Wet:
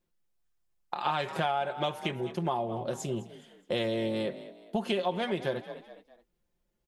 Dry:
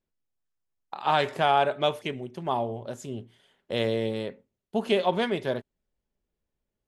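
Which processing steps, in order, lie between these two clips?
comb filter 5.7 ms, depth 56%
on a send: echo with shifted repeats 209 ms, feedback 39%, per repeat +38 Hz, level −18.5 dB
on the sum: downward compressor 6 to 1, threshold −30 dBFS, peak gain reduction 14.5 dB
level +3 dB

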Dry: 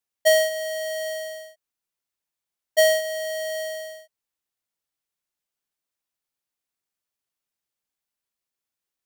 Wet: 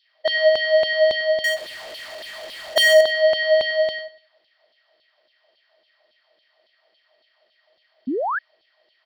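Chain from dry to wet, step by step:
compressor on every frequency bin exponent 0.6
brickwall limiter −21 dBFS, peak gain reduction 7.5 dB
downsampling to 11,025 Hz
auto-filter high-pass saw down 3.6 Hz 280–3,800 Hz
0:01.44–0:03.01: power curve on the samples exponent 0.5
repeating echo 97 ms, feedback 33%, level −17 dB
0:08.07–0:08.39: sound drawn into the spectrogram rise 230–1,800 Hz −26 dBFS
level +3 dB

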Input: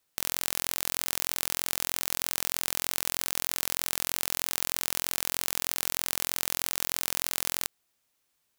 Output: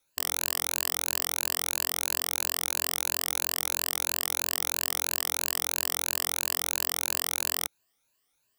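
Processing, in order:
rippled gain that drifts along the octave scale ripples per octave 1.4, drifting +3 Hz, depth 14 dB
level −1.5 dB

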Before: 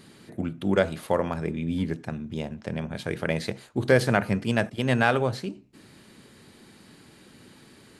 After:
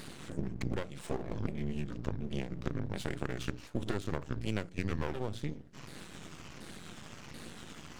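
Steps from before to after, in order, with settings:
pitch shifter swept by a sawtooth −9 semitones, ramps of 734 ms
mains-hum notches 60/120/180/240/300 Hz
downward compressor 8 to 1, threshold −37 dBFS, peak gain reduction 20 dB
half-wave rectification
dynamic equaliser 1,100 Hz, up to −6 dB, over −59 dBFS, Q 0.71
level +9 dB

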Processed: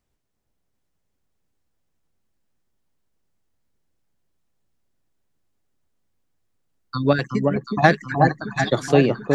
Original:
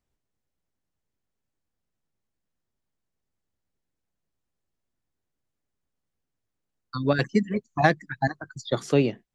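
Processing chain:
0:07.15–0:07.83: downward compressor 5 to 1, threshold −26 dBFS, peak gain reduction 10 dB
on a send: delay that swaps between a low-pass and a high-pass 368 ms, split 1,200 Hz, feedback 71%, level −3 dB
on the sum: level +5 dB

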